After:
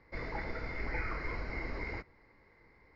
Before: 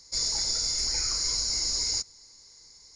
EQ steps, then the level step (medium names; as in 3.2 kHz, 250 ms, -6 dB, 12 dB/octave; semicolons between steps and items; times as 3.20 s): elliptic low-pass 2.1 kHz, stop band 80 dB; bass shelf 220 Hz -10 dB; peaking EQ 1 kHz -8.5 dB 2.4 oct; +13.0 dB